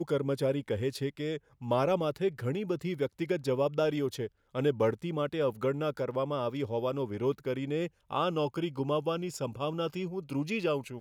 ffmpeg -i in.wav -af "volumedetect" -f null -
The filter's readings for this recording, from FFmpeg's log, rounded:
mean_volume: -31.6 dB
max_volume: -16.3 dB